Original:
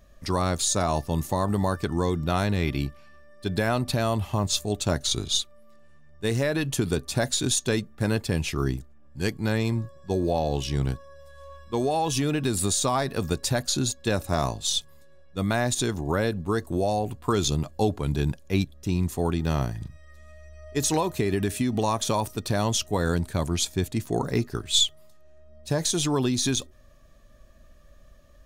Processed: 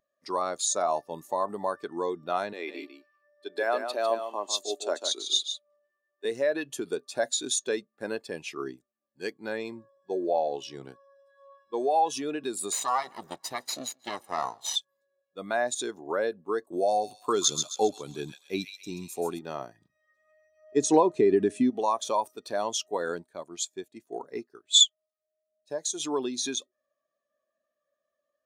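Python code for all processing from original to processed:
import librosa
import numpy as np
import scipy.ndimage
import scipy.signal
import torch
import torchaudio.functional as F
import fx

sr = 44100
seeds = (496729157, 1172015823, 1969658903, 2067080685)

y = fx.chain(x, sr, fx.highpass(hz=260.0, slope=24),
    fx.echo_single(ms=150, db=-5.5), at=(2.53, 6.25))
y = fx.chain(y, sr, fx.lower_of_two(delay_ms=1.0),
    fx.echo_feedback(ms=155, feedback_pct=43, wet_db=-21.5), at=(12.72, 14.76))
y = fx.chain(y, sr, fx.bass_treble(bass_db=4, treble_db=7),
    fx.echo_wet_highpass(ms=133, feedback_pct=55, hz=1800.0, wet_db=-3.5), at=(16.73, 19.39))
y = fx.chain(y, sr, fx.lowpass(hz=9900.0, slope=24),
    fx.low_shelf(hz=420.0, db=11.0), at=(20.72, 21.7))
y = fx.chain(y, sr, fx.dynamic_eq(hz=7200.0, q=4.5, threshold_db=-42.0, ratio=4.0, max_db=6),
    fx.upward_expand(threshold_db=-33.0, expansion=1.5), at=(23.22, 26.0))
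y = scipy.signal.sosfilt(scipy.signal.butter(2, 410.0, 'highpass', fs=sr, output='sos'), y)
y = fx.spectral_expand(y, sr, expansion=1.5)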